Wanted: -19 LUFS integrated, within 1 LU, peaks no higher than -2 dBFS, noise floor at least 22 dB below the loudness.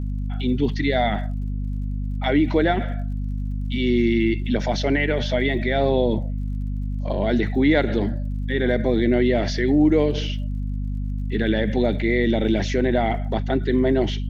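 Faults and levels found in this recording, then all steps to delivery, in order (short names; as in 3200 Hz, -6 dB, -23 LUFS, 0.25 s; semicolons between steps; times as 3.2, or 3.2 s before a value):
ticks 52/s; hum 50 Hz; harmonics up to 250 Hz; hum level -23 dBFS; loudness -22.5 LUFS; peak -6.0 dBFS; loudness target -19.0 LUFS
-> de-click; de-hum 50 Hz, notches 5; gain +3.5 dB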